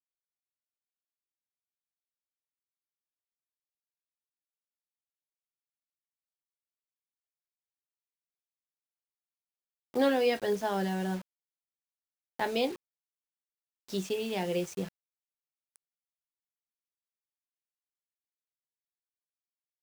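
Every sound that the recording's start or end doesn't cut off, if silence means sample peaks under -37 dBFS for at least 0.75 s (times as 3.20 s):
9.95–11.19 s
12.39–12.73 s
13.90–14.88 s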